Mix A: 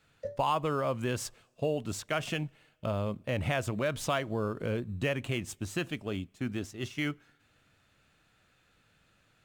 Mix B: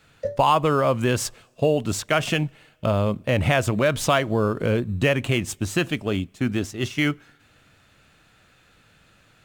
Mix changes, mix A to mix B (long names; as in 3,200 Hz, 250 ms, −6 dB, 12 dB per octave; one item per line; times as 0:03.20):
speech +10.5 dB
background +10.5 dB